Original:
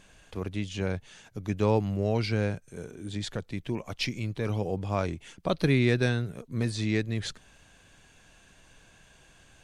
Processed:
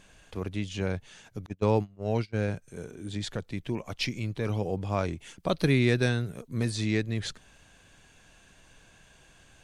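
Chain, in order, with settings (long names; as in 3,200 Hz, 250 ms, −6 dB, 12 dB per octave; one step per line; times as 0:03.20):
0:01.46–0:02.48: noise gate −25 dBFS, range −30 dB
0:05.19–0:06.95: high-shelf EQ 7,500 Hz +6 dB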